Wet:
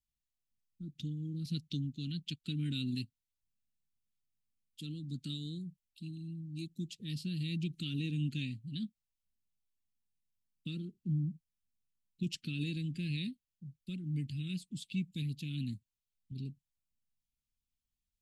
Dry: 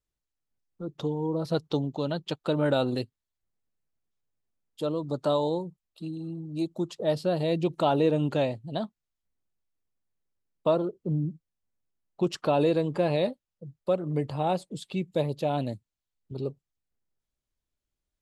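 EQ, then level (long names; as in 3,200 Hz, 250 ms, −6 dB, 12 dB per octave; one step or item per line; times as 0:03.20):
elliptic band-stop filter 240–2,500 Hz, stop band 80 dB
−3.5 dB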